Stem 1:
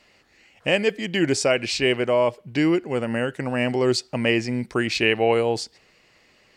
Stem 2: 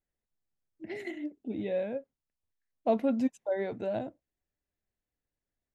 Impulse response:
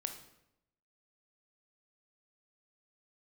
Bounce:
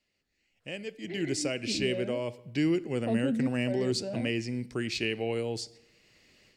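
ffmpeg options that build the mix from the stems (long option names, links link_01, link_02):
-filter_complex "[0:a]dynaudnorm=framelen=360:gausssize=3:maxgain=11dB,volume=-12.5dB,afade=type=in:start_time=0.91:duration=0.58:silence=0.398107,asplit=2[link_01][link_02];[link_02]volume=-8.5dB[link_03];[1:a]lowpass=3800,adelay=200,volume=2dB[link_04];[2:a]atrim=start_sample=2205[link_05];[link_03][link_05]afir=irnorm=-1:irlink=0[link_06];[link_01][link_04][link_06]amix=inputs=3:normalize=0,equalizer=frequency=980:width_type=o:width=1.8:gain=-10.5,acrossover=split=390|3000[link_07][link_08][link_09];[link_08]acompressor=threshold=-32dB:ratio=6[link_10];[link_07][link_10][link_09]amix=inputs=3:normalize=0"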